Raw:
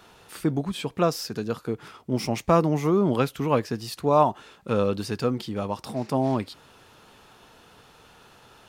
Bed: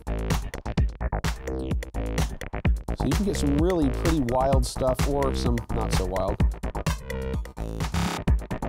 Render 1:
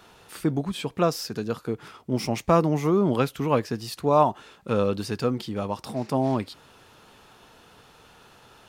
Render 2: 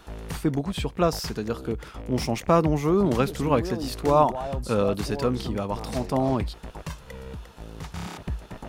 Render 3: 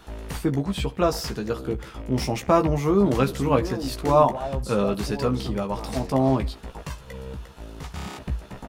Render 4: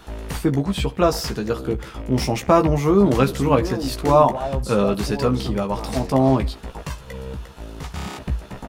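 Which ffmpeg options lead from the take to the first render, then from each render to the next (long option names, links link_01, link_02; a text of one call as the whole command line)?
ffmpeg -i in.wav -af anull out.wav
ffmpeg -i in.wav -i bed.wav -filter_complex "[1:a]volume=-9dB[link_01];[0:a][link_01]amix=inputs=2:normalize=0" out.wav
ffmpeg -i in.wav -filter_complex "[0:a]asplit=2[link_01][link_02];[link_02]adelay=15,volume=-5.5dB[link_03];[link_01][link_03]amix=inputs=2:normalize=0,asplit=2[link_04][link_05];[link_05]adelay=68,lowpass=frequency=3500:poles=1,volume=-21.5dB,asplit=2[link_06][link_07];[link_07]adelay=68,lowpass=frequency=3500:poles=1,volume=0.55,asplit=2[link_08][link_09];[link_09]adelay=68,lowpass=frequency=3500:poles=1,volume=0.55,asplit=2[link_10][link_11];[link_11]adelay=68,lowpass=frequency=3500:poles=1,volume=0.55[link_12];[link_04][link_06][link_08][link_10][link_12]amix=inputs=5:normalize=0" out.wav
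ffmpeg -i in.wav -af "volume=4dB,alimiter=limit=-3dB:level=0:latency=1" out.wav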